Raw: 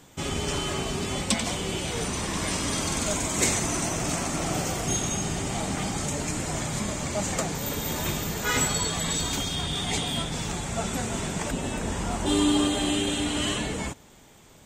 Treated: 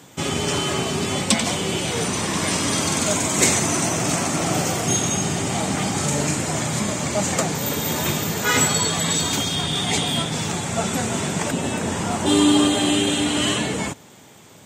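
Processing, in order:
high-pass filter 94 Hz 24 dB per octave
0:05.91–0:06.36: flutter between parallel walls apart 7.1 metres, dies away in 0.4 s
level +6.5 dB

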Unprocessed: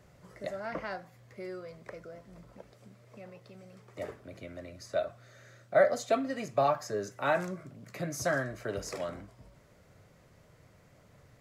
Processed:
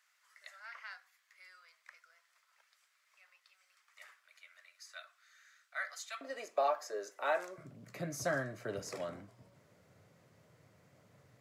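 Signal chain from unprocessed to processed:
high-pass filter 1,300 Hz 24 dB per octave, from 0:06.21 400 Hz, from 0:07.58 94 Hz
level −4.5 dB

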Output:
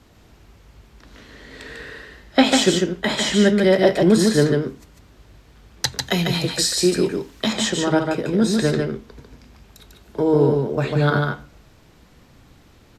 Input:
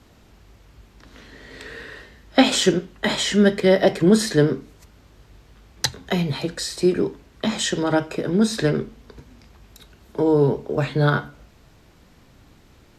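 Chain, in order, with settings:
0:06.01–0:07.53: high-shelf EQ 2,700 Hz +10 dB
single-tap delay 147 ms −4 dB

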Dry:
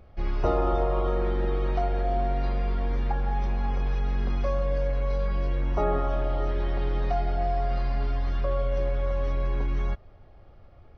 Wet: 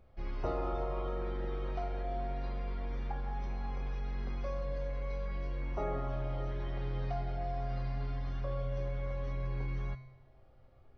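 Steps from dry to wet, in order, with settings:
tuned comb filter 130 Hz, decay 0.81 s, harmonics all, mix 80%
level +2 dB

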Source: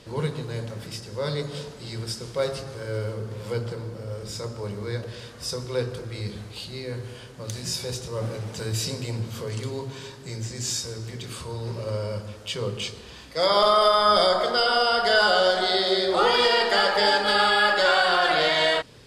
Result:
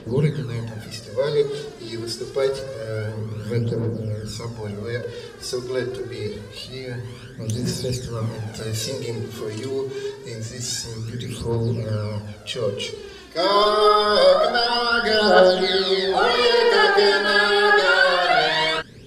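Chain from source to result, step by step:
phase shifter 0.26 Hz, delay 3.1 ms, feedback 64%
hollow resonant body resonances 220/390/1,600 Hz, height 8 dB, ringing for 30 ms
level −1 dB

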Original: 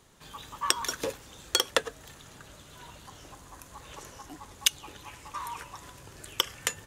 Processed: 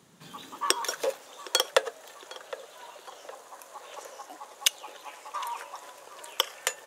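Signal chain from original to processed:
high-pass filter sweep 170 Hz → 580 Hz, 0:00.22–0:00.96
feedback echo with a low-pass in the loop 762 ms, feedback 51%, low-pass 2,300 Hz, level −15 dB

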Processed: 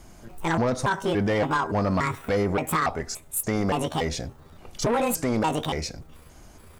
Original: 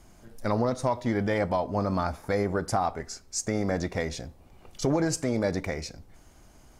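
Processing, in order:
pitch shifter gated in a rhythm +8 semitones, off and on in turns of 286 ms
soft clipping −23.5 dBFS, distortion −13 dB
level +6 dB

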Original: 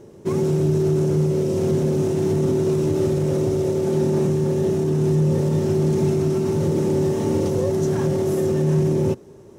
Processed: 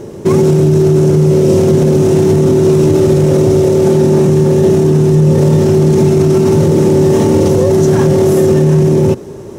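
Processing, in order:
boost into a limiter +17.5 dB
level −1 dB

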